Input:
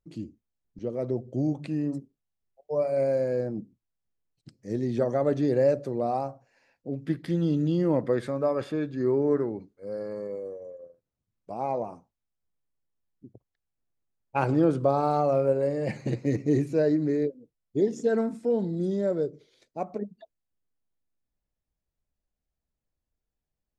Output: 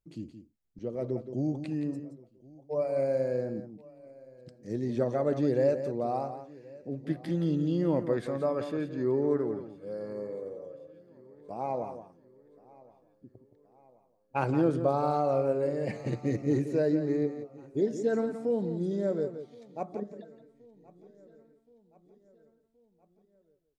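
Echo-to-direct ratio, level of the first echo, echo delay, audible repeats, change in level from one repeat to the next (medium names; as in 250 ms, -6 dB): -9.5 dB, -10.0 dB, 172 ms, 5, no regular repeats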